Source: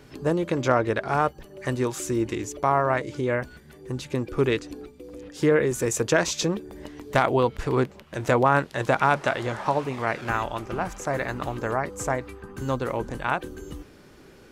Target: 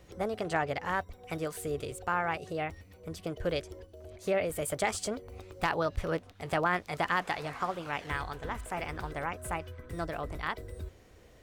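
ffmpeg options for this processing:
ffmpeg -i in.wav -af "asetrate=56007,aresample=44100,lowshelf=frequency=120:width_type=q:width=1.5:gain=8,volume=-8.5dB" out.wav

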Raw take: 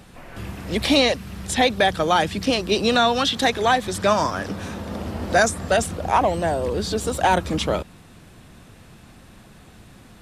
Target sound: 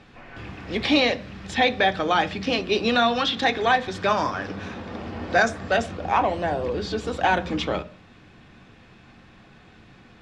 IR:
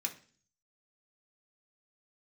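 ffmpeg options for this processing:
-filter_complex "[0:a]lowpass=4200,asplit=2[link_01][link_02];[1:a]atrim=start_sample=2205,lowpass=6100[link_03];[link_02][link_03]afir=irnorm=-1:irlink=0,volume=-2dB[link_04];[link_01][link_04]amix=inputs=2:normalize=0,volume=-5dB"

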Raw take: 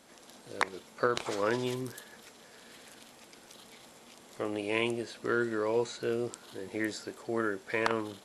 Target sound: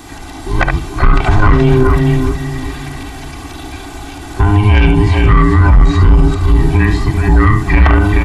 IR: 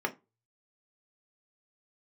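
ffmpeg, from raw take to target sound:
-filter_complex "[0:a]afftfilt=real='real(if(between(b,1,1008),(2*floor((b-1)/24)+1)*24-b,b),0)':imag='imag(if(between(b,1,1008),(2*floor((b-1)/24)+1)*24-b,b),0)*if(between(b,1,1008),-1,1)':win_size=2048:overlap=0.75,aecho=1:1:2.6:0.72,asplit=2[link_01][link_02];[link_02]adelay=392,lowpass=frequency=1000:poles=1,volume=-12.5dB,asplit=2[link_03][link_04];[link_04]adelay=392,lowpass=frequency=1000:poles=1,volume=0.47,asplit=2[link_05][link_06];[link_06]adelay=392,lowpass=frequency=1000:poles=1,volume=0.47,asplit=2[link_07][link_08];[link_08]adelay=392,lowpass=frequency=1000:poles=1,volume=0.47,asplit=2[link_09][link_10];[link_10]adelay=392,lowpass=frequency=1000:poles=1,volume=0.47[link_11];[link_03][link_05][link_07][link_09][link_11]amix=inputs=5:normalize=0[link_12];[link_01][link_12]amix=inputs=2:normalize=0,acrossover=split=2900[link_13][link_14];[link_14]acompressor=threshold=-58dB:ratio=4:attack=1:release=60[link_15];[link_13][link_15]amix=inputs=2:normalize=0,lowshelf=frequency=400:gain=9,asplit=2[link_16][link_17];[link_17]aecho=0:1:72|427|476:0.355|0.376|0.126[link_18];[link_16][link_18]amix=inputs=2:normalize=0,asoftclip=type=tanh:threshold=-17dB,alimiter=level_in=22dB:limit=-1dB:release=50:level=0:latency=1,volume=-1dB"

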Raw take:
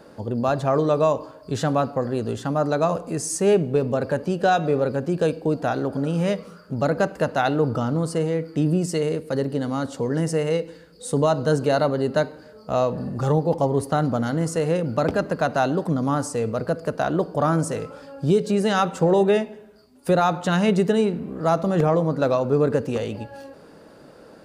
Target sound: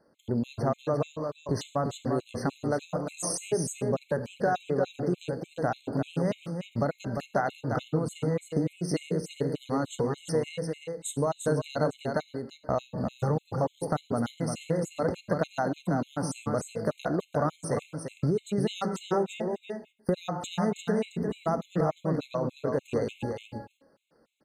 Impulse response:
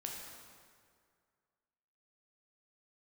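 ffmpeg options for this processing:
-filter_complex "[0:a]agate=range=-22dB:threshold=-36dB:ratio=16:detection=peak,acompressor=threshold=-29dB:ratio=5,aecho=1:1:349:0.531,asplit=2[link_01][link_02];[1:a]atrim=start_sample=2205,atrim=end_sample=6615[link_03];[link_02][link_03]afir=irnorm=-1:irlink=0,volume=-6dB[link_04];[link_01][link_04]amix=inputs=2:normalize=0,afftfilt=real='re*gt(sin(2*PI*3.4*pts/sr)*(1-2*mod(floor(b*sr/1024/2100),2)),0)':imag='im*gt(sin(2*PI*3.4*pts/sr)*(1-2*mod(floor(b*sr/1024/2100),2)),0)':win_size=1024:overlap=0.75,volume=1.5dB"

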